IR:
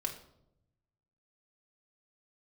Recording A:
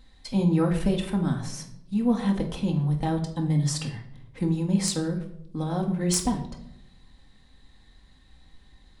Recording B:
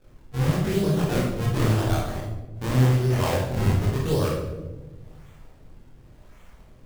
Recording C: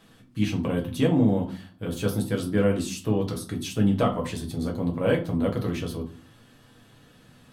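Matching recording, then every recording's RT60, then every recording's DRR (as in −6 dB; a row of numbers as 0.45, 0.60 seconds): A; 0.80, 1.2, 0.45 seconds; 1.0, −7.5, −0.5 decibels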